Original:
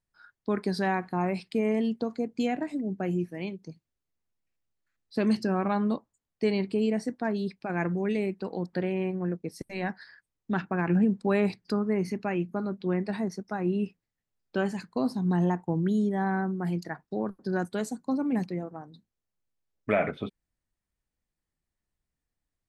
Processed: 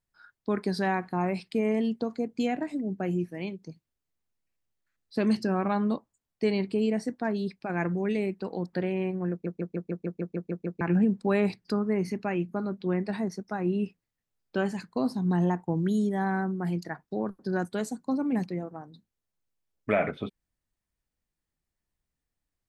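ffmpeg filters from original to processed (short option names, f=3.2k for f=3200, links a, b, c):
-filter_complex "[0:a]asettb=1/sr,asplit=3[a][b][c];[a]atrim=end=15.774[d];[b]atrim=start=15.77:end=16.44,asetpts=PTS-STARTPTS,afade=t=in:d=0.004:c=qsin,afade=t=out:st=0.666:d=0.004:c=qsin,aemphasis=mode=production:type=cd[e];[c]atrim=start=16.436[f];[d][e]acrossfade=d=0.004:c1=hsin:c2=qsin[g];[g][f]acrossfade=d=0.004:c1=qsin:c2=hsin,asplit=11[h][i][j][k][l][m][n][o][p][q][r];[h]atrim=end=9.462[s];[i]atrim=start=9.308:end=9.462[t];[j]atrim=start=9.308:end=9.462[u];[k]atrim=start=9.308:end=9.462[v];[l]atrim=start=9.308:end=9.462[w];[m]atrim=start=9.308:end=9.462[x];[n]atrim=start=9.308:end=9.462[y];[o]atrim=start=9.308:end=9.462[z];[p]atrim=start=9.308:end=9.462[aa];[q]atrim=start=9.308:end=9.462[ab];[r]atrim=start=10.808[ac];[s][t]acrossfade=d=0.004:c1=hsin:c2=hsin[ad];[ad][u]acrossfade=d=0.004:c1=hsin:c2=hsin[ae];[ae][v]acrossfade=d=0.004:c1=hsin:c2=hsin[af];[af][w]acrossfade=d=0.004:c1=hsin:c2=hsin[ag];[ag][x]acrossfade=d=0.004:c1=hsin:c2=hsin[ah];[ah][y]acrossfade=d=0.004:c1=hsin:c2=hsin[ai];[ai][z]acrossfade=d=0.004:c1=hsin:c2=hsin[aj];[aj][aa]acrossfade=d=0.004:c1=hsin:c2=hsin[ak];[ak][ab]acrossfade=d=0.004:c1=hsin:c2=hsin[al];[al][ac]acrossfade=d=0.004:c1=hsin:c2=hsin"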